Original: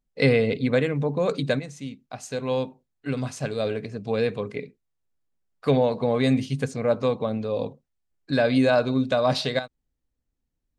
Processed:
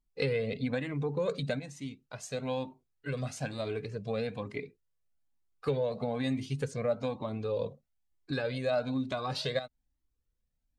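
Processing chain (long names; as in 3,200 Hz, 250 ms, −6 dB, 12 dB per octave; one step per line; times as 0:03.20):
downward compressor 4 to 1, threshold −24 dBFS, peak gain reduction 9 dB
flanger whose copies keep moving one way rising 1.1 Hz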